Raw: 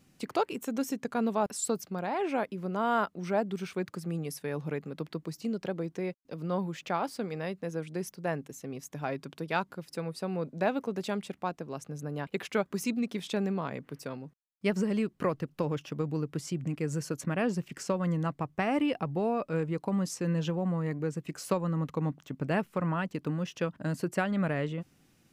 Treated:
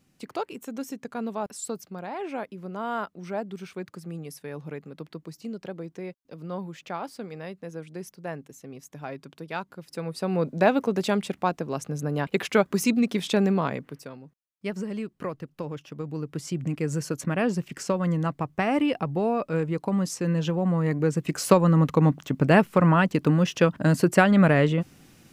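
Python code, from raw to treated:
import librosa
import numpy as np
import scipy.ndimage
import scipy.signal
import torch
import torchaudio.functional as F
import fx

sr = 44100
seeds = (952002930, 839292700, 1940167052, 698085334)

y = fx.gain(x, sr, db=fx.line((9.68, -2.5), (10.4, 8.5), (13.67, 8.5), (14.12, -3.0), (15.94, -3.0), (16.61, 4.5), (20.42, 4.5), (21.44, 11.5)))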